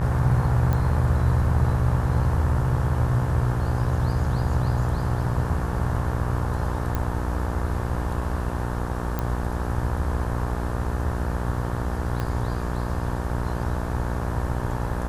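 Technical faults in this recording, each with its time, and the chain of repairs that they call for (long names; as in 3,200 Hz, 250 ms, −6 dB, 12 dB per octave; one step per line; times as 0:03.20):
mains buzz 60 Hz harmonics 30 −28 dBFS
0:00.73: click −14 dBFS
0:06.95: click −13 dBFS
0:09.19: click −13 dBFS
0:12.20: click −15 dBFS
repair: click removal
hum removal 60 Hz, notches 30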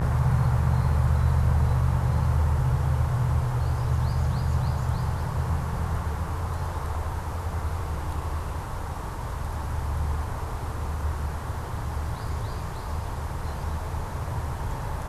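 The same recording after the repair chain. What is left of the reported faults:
0:06.95: click
0:12.20: click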